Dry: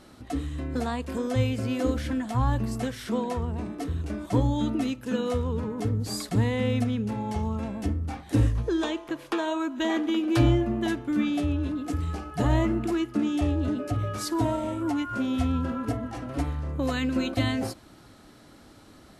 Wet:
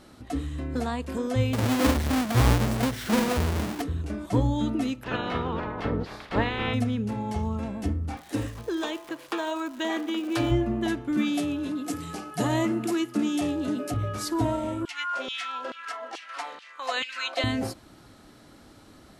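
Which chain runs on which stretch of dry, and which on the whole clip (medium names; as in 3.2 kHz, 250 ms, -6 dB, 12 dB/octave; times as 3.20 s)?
1.53–3.82 s: square wave that keeps the level + high-pass 50 Hz
5.02–6.73 s: spectral peaks clipped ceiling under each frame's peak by 26 dB + upward compressor, threshold -28 dBFS + distance through air 350 m
8.16–10.50 s: high-pass 380 Hz 6 dB/octave + crackle 330 per s -38 dBFS
11.17–13.94 s: high-pass 130 Hz 24 dB/octave + treble shelf 4.3 kHz +10.5 dB
14.85–17.44 s: band-pass 180–4700 Hz + tilt EQ +3.5 dB/octave + LFO high-pass saw down 2.3 Hz 380–3300 Hz
whole clip: none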